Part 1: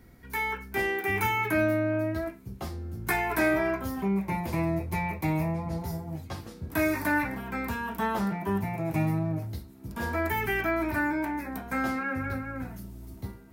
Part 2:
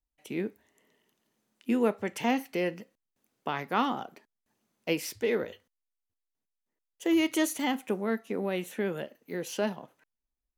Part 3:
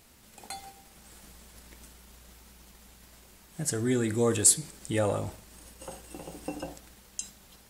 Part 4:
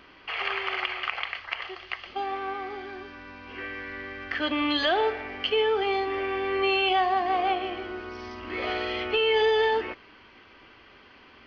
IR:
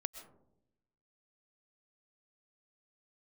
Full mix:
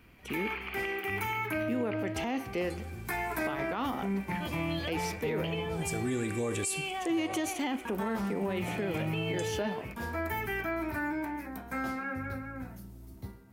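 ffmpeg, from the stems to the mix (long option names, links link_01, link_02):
-filter_complex "[0:a]volume=-9dB,asplit=3[link_01][link_02][link_03];[link_01]atrim=end=6.07,asetpts=PTS-STARTPTS,afade=type=out:start_time=6.066:duration=0.004:curve=hsin[link_04];[link_02]atrim=start=6.07:end=7.85,asetpts=PTS-STARTPTS,volume=0[link_05];[link_03]atrim=start=7.85,asetpts=PTS-STARTPTS,afade=type=in:duration=0.004:curve=hsin[link_06];[link_04][link_05][link_06]concat=n=3:v=0:a=1,asplit=2[link_07][link_08];[link_08]volume=-3.5dB[link_09];[1:a]highshelf=frequency=11000:gain=-12,volume=-0.5dB,asplit=3[link_10][link_11][link_12];[link_11]volume=-13dB[link_13];[2:a]adelay=2200,volume=-3.5dB[link_14];[3:a]equalizer=frequency=2400:width=6.4:gain=11,volume=-14dB[link_15];[link_12]apad=whole_len=436232[link_16];[link_14][link_16]sidechaincompress=threshold=-33dB:ratio=8:attack=16:release=684[link_17];[4:a]atrim=start_sample=2205[link_18];[link_09][link_13]amix=inputs=2:normalize=0[link_19];[link_19][link_18]afir=irnorm=-1:irlink=0[link_20];[link_07][link_10][link_17][link_15][link_20]amix=inputs=5:normalize=0,alimiter=limit=-23.5dB:level=0:latency=1:release=49"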